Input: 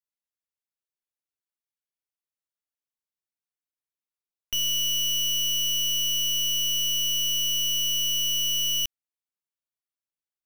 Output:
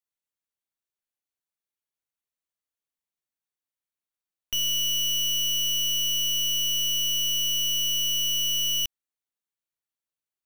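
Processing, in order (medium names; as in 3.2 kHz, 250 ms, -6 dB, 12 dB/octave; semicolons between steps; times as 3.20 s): band-stop 5.1 kHz, Q 10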